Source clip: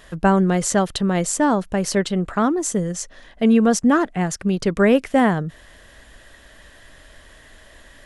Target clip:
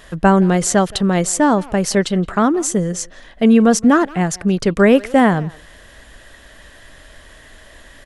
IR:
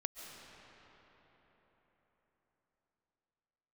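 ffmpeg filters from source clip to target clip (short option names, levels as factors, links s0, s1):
-filter_complex "[0:a]asplit=2[s0][s1];[s1]adelay=170,highpass=300,lowpass=3400,asoftclip=type=hard:threshold=0.211,volume=0.1[s2];[s0][s2]amix=inputs=2:normalize=0,volume=1.58"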